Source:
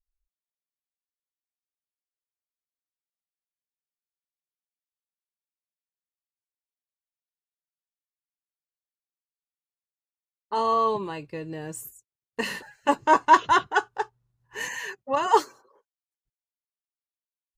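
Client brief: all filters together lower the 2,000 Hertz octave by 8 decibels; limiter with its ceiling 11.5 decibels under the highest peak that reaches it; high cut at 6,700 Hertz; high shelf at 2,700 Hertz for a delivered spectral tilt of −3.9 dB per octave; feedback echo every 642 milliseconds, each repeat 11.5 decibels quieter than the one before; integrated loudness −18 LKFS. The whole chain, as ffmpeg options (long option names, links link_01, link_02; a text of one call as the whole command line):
ffmpeg -i in.wav -af "lowpass=6700,equalizer=frequency=2000:width_type=o:gain=-8.5,highshelf=frequency=2700:gain=-8.5,alimiter=limit=-18.5dB:level=0:latency=1,aecho=1:1:642|1284|1926:0.266|0.0718|0.0194,volume=14.5dB" out.wav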